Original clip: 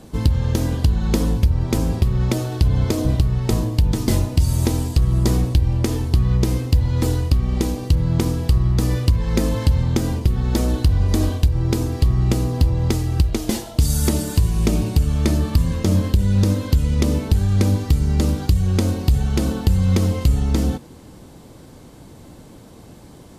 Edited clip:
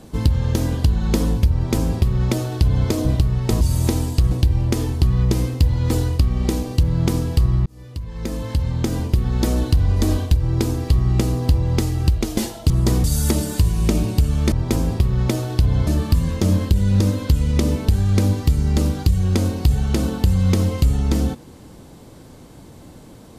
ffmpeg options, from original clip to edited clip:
-filter_complex "[0:a]asplit=8[a][b][c][d][e][f][g][h];[a]atrim=end=3.612[i];[b]atrim=start=4.388:end=5.092[j];[c]atrim=start=5.428:end=8.78,asetpts=PTS-STARTPTS,afade=t=out:st=3.348:d=0.004:c=hsin[k];[d]atrim=start=8.78:end=13.822,asetpts=PTS-STARTPTS,afade=t=in:d=1.5[l];[e]atrim=start=5.088:end=5.432[m];[f]atrim=start=13.818:end=15.302[n];[g]atrim=start=1.538:end=2.892[o];[h]atrim=start=15.298[p];[i][j]acrossfade=d=0.004:c1=hsin:c2=hsin[q];[k][l]concat=n=2:v=0:a=1[r];[q][r]acrossfade=d=0.004:c1=hsin:c2=hsin[s];[s][m]acrossfade=d=0.004:c1=hsin:c2=hsin[t];[t][n]acrossfade=d=0.004:c1=hsin:c2=hsin[u];[u][o]acrossfade=d=0.004:c1=hsin:c2=hsin[v];[v][p]acrossfade=d=0.004:c1=hsin:c2=hsin"

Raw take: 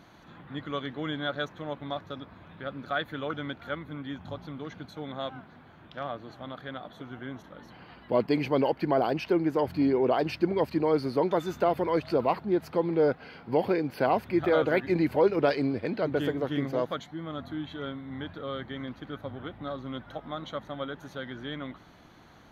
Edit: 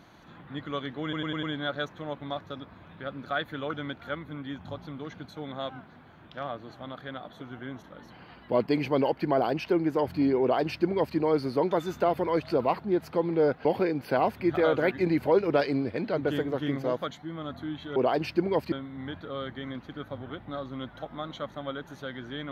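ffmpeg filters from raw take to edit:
-filter_complex "[0:a]asplit=8[a][b][c][d][e][f][g][h];[a]atrim=end=1.132[i];[b]atrim=start=1.028:end=1.132[j];[c]atrim=start=1.028:end=1.132[k];[d]atrim=start=1.028:end=1.132[l];[e]atrim=start=1.028:end=13.252[m];[f]atrim=start=13.538:end=17.852[n];[g]atrim=start=10.008:end=10.772[o];[h]atrim=start=17.848[p];[i][j]acrossfade=d=0.004:c1=hsin:c2=hsin[q];[q][k]acrossfade=d=0.004:c1=hsin:c2=hsin[r];[r][l]acrossfade=d=0.004:c1=hsin:c2=hsin[s];[s][m]acrossfade=d=0.004:c1=hsin:c2=hsin[t];[t][n]acrossfade=d=0.004:c1=hsin:c2=hsin[u];[u][o]acrossfade=d=0.004:c1=hsin:c2=hsin[v];[v][p]acrossfade=d=0.004:c1=hsin:c2=hsin"

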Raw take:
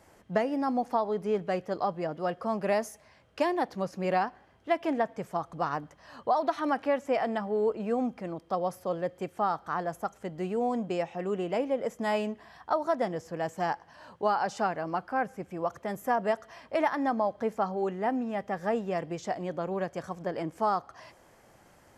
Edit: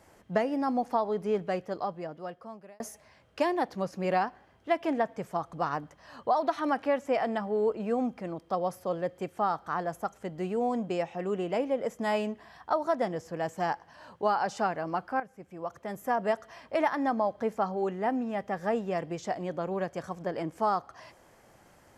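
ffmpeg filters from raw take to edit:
-filter_complex "[0:a]asplit=3[a][b][c];[a]atrim=end=2.8,asetpts=PTS-STARTPTS,afade=t=out:st=1.39:d=1.41[d];[b]atrim=start=2.8:end=15.2,asetpts=PTS-STARTPTS,afade=t=in:d=0.004:c=hsin,afade=t=out:st=12.396:d=0.004:c=hsin:silence=0.223872[e];[c]atrim=start=15.2,asetpts=PTS-STARTPTS,afade=t=in:d=1.11:silence=0.223872[f];[d][e][f]concat=n=3:v=0:a=1"

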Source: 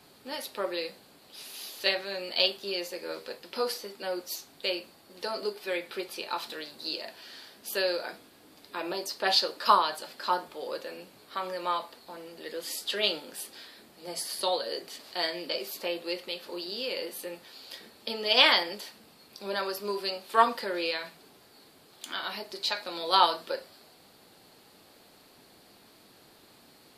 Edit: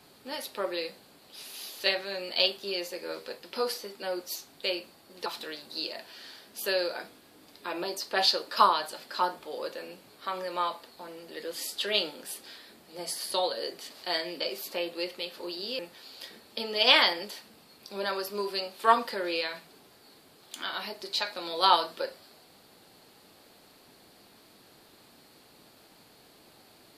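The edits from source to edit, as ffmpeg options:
-filter_complex "[0:a]asplit=3[a][b][c];[a]atrim=end=5.262[d];[b]atrim=start=6.348:end=16.882[e];[c]atrim=start=17.288[f];[d][e]acrossfade=d=0.004:c1=hsin:c2=hsin[g];[g][f]acrossfade=d=0.004:c1=hsin:c2=hsin"

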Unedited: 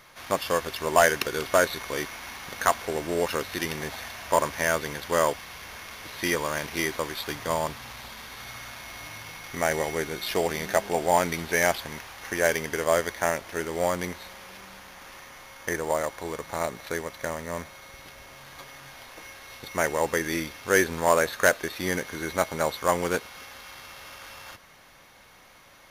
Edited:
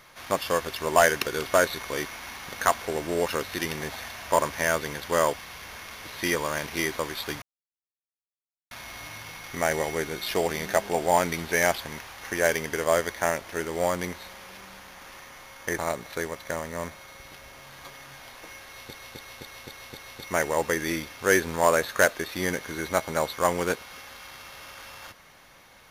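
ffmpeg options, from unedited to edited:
-filter_complex "[0:a]asplit=9[a][b][c][d][e][f][g][h][i];[a]atrim=end=7.42,asetpts=PTS-STARTPTS,afade=t=out:st=7.416:d=0.004:c=hsin[j];[b]atrim=start=7.42:end=8.71,asetpts=PTS-STARTPTS,volume=0[k];[c]atrim=start=8.71:end=15.782,asetpts=PTS-STARTPTS,afade=t=in:d=0.004:c=hsin[l];[d]atrim=start=16.518:end=19.672[m];[e]atrim=start=19.408:end=19.672[n];[f]atrim=start=19.408:end=19.672[o];[g]atrim=start=19.408:end=19.672[p];[h]atrim=start=19.408:end=19.672[q];[i]atrim=start=19.408[r];[j][k][l]concat=n=3:v=0:a=1[s];[s][m]acrossfade=d=0.004:c1=hsin:c2=hsin[t];[t][n]acrossfade=d=0.004:c1=hsin:c2=hsin[u];[u][o]acrossfade=d=0.004:c1=hsin:c2=hsin[v];[v][p]acrossfade=d=0.004:c1=hsin:c2=hsin[w];[w][q]acrossfade=d=0.004:c1=hsin:c2=hsin[x];[x][r]acrossfade=d=0.004:c1=hsin:c2=hsin"

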